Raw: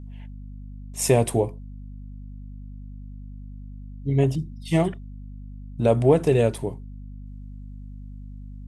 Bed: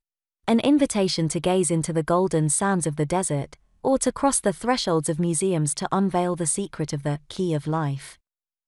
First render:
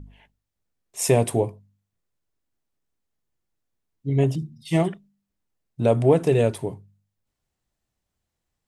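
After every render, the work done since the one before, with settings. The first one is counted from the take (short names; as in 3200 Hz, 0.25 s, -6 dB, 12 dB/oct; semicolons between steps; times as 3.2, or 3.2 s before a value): de-hum 50 Hz, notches 5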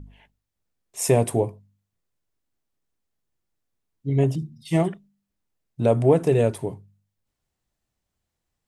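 dynamic EQ 3500 Hz, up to -4 dB, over -42 dBFS, Q 0.96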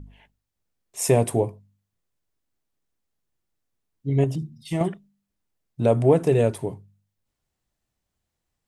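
4.24–4.81 compressor 2.5:1, threshold -23 dBFS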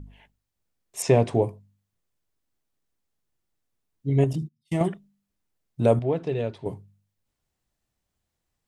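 1.02–1.42 LPF 5600 Hz 24 dB/oct; 4.33–4.88 gate -38 dBFS, range -29 dB; 5.99–6.66 ladder low-pass 4900 Hz, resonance 40%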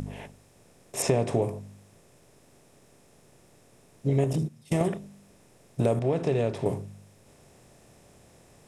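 per-bin compression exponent 0.6; compressor 3:1, threshold -22 dBFS, peak gain reduction 8 dB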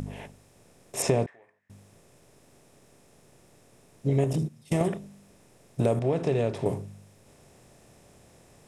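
1.26–1.7 band-pass 1800 Hz, Q 11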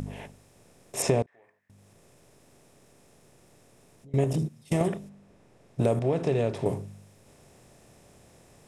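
1.22–4.14 compressor 4:1, threshold -53 dBFS; 5.08–5.8 LPF 1500 Hz -> 3500 Hz 6 dB/oct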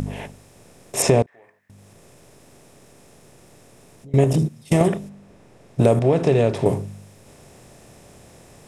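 gain +8.5 dB; limiter -2 dBFS, peak gain reduction 1.5 dB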